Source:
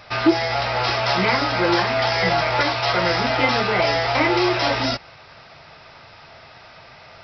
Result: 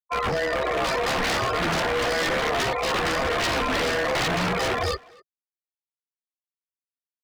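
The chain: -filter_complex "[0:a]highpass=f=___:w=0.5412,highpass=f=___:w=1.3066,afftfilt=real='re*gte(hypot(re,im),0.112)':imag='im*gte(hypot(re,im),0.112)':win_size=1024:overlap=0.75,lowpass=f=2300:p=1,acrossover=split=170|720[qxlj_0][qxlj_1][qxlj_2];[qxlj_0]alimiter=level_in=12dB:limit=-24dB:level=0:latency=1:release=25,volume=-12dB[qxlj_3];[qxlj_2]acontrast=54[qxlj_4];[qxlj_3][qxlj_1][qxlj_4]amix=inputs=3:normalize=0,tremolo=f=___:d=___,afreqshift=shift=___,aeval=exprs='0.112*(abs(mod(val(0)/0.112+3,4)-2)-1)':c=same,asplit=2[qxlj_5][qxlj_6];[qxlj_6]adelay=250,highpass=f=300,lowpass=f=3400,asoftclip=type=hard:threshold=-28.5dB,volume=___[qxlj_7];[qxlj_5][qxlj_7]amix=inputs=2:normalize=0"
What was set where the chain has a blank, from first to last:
130, 130, 73, 0.462, -180, -19dB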